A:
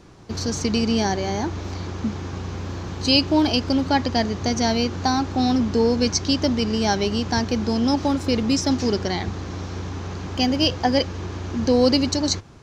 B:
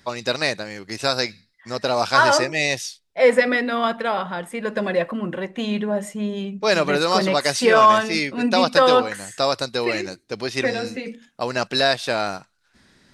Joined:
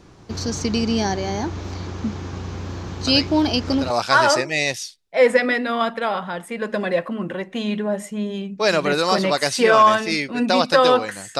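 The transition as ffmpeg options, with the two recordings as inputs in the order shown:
-filter_complex "[1:a]asplit=2[s0][s1];[0:a]apad=whole_dur=11.39,atrim=end=11.39,atrim=end=3.902[s2];[s1]atrim=start=1.928:end=9.42[s3];[s0]atrim=start=1.1:end=1.93,asetpts=PTS-STARTPTS,volume=0.447,afade=t=in:d=0.004:c=hsin,afade=t=out:st=0.826:d=0.004:c=hsin,adelay=3070[s4];[s2][s3]acrossfade=d=0.004:c1=hsin:c2=hsin[s5];[s5][s4]amix=inputs=2:normalize=0"

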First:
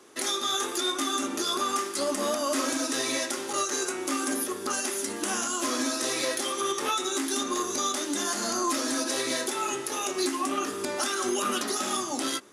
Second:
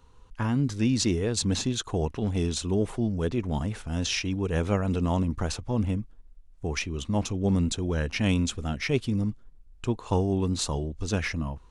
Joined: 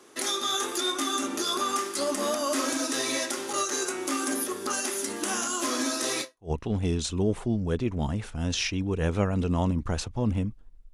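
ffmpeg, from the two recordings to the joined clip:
-filter_complex "[0:a]apad=whole_dur=10.93,atrim=end=10.93,atrim=end=6.51,asetpts=PTS-STARTPTS[s0];[1:a]atrim=start=1.73:end=6.45,asetpts=PTS-STARTPTS[s1];[s0][s1]acrossfade=d=0.3:c1=exp:c2=exp"

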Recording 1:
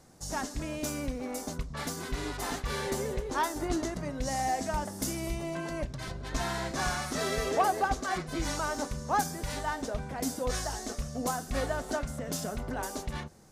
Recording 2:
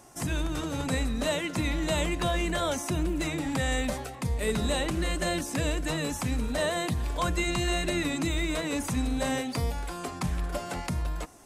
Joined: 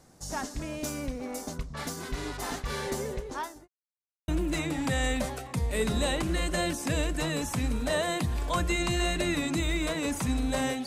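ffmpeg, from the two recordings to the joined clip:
-filter_complex "[0:a]apad=whole_dur=10.86,atrim=end=10.86,asplit=2[s0][s1];[s0]atrim=end=3.68,asetpts=PTS-STARTPTS,afade=t=out:st=2.88:d=0.8:c=qsin[s2];[s1]atrim=start=3.68:end=4.28,asetpts=PTS-STARTPTS,volume=0[s3];[1:a]atrim=start=2.96:end=9.54,asetpts=PTS-STARTPTS,afade=t=in:d=0.004:c=hsin[s4];[s2][s3][s4]concat=n=3:v=0:a=1"

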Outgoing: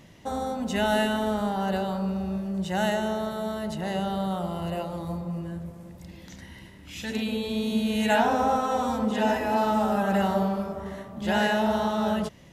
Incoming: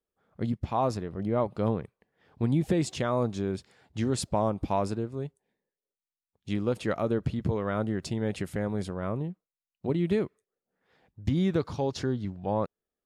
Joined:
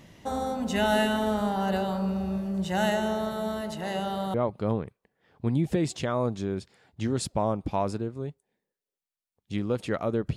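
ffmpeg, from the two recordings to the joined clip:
-filter_complex "[0:a]asettb=1/sr,asplit=3[s0][s1][s2];[s0]atrim=end=3.614[s3];[s1]atrim=start=3.61:end=4.34,asetpts=PTS-STARTPTS,afade=t=in:d=0.004:c=qsin,afade=t=out:st=0.726:d=0.004:c=qsin,lowshelf=f=200:g=-8.5[s4];[s2]atrim=start=4.336[s5];[s3][s4]acrossfade=d=0.004:c1=hsin:c2=qsin[s6];[s6][s5]acrossfade=d=0.004:c1=qsin:c2=hsin,apad=whole_dur=10.36,atrim=end=10.36,atrim=end=4.342[s7];[1:a]atrim=start=1.308:end=7.33[s8];[s7][s8]acrossfade=d=0.004:c1=hsin:c2=hsin"

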